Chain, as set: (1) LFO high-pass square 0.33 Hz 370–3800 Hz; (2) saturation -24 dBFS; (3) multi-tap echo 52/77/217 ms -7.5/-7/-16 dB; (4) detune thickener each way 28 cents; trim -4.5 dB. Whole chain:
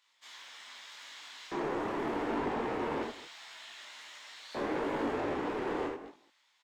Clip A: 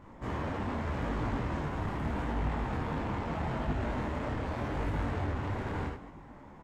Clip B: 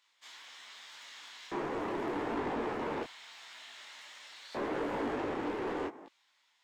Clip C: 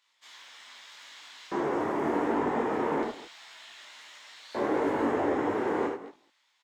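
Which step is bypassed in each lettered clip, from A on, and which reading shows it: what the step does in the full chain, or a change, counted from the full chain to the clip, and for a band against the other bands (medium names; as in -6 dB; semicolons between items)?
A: 1, 125 Hz band +16.5 dB; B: 3, crest factor change -2.5 dB; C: 2, distortion -9 dB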